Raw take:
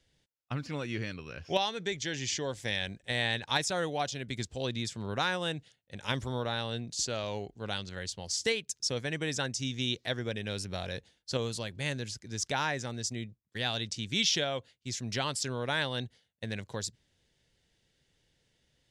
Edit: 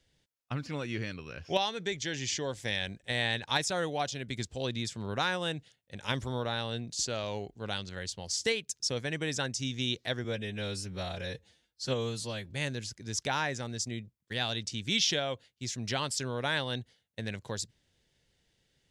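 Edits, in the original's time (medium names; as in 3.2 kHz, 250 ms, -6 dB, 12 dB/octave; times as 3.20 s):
10.24–11.75 s: stretch 1.5×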